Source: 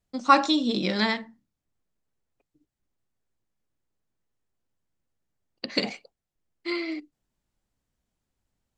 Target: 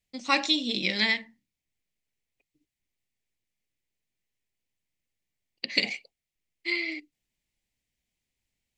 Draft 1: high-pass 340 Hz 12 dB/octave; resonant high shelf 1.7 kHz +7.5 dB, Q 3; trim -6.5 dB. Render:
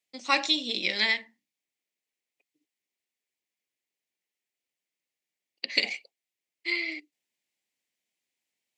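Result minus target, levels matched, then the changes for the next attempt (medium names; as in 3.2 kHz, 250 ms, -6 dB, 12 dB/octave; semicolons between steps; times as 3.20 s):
250 Hz band -5.0 dB
remove: high-pass 340 Hz 12 dB/octave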